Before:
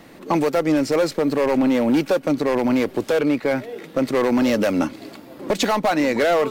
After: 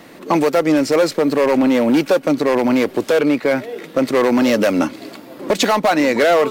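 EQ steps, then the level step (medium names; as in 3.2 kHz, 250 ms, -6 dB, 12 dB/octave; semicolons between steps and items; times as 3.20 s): bass shelf 110 Hz -11 dB; band-stop 820 Hz, Q 25; +5.0 dB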